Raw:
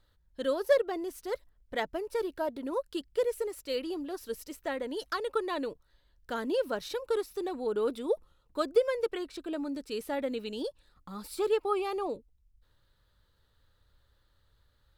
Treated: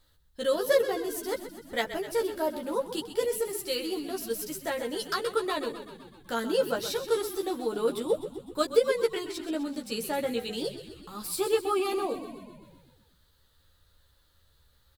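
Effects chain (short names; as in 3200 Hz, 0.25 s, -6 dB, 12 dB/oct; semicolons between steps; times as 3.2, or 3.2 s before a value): high shelf 4300 Hz +11 dB; doubler 13 ms -2.5 dB; frequency-shifting echo 0.127 s, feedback 63%, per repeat -36 Hz, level -11.5 dB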